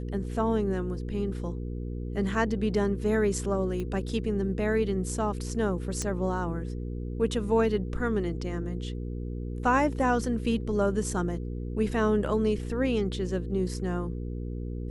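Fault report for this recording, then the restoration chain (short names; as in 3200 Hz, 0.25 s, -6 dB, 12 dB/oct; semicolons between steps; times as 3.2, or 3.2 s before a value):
hum 60 Hz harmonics 8 -34 dBFS
3.8 pop -23 dBFS
6.02 pop -18 dBFS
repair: de-click; de-hum 60 Hz, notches 8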